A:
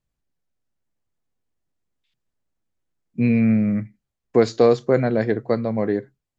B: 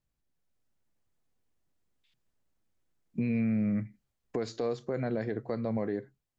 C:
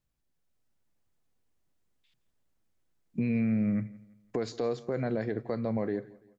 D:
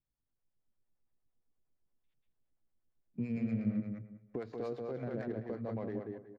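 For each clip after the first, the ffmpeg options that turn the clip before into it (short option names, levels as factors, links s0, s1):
-af "acompressor=threshold=0.0316:ratio=3,alimiter=limit=0.0668:level=0:latency=1:release=57,dynaudnorm=f=160:g=5:m=1.58,volume=0.708"
-af "aecho=1:1:169|338|507:0.0841|0.0328|0.0128,volume=1.12"
-filter_complex "[0:a]aecho=1:1:186|372|558|744:0.668|0.174|0.0452|0.0117,acrossover=split=490[s0][s1];[s0]aeval=exprs='val(0)*(1-0.7/2+0.7/2*cos(2*PI*8.7*n/s))':c=same[s2];[s1]aeval=exprs='val(0)*(1-0.7/2-0.7/2*cos(2*PI*8.7*n/s))':c=same[s3];[s2][s3]amix=inputs=2:normalize=0,adynamicsmooth=sensitivity=6:basefreq=1800,volume=0.562"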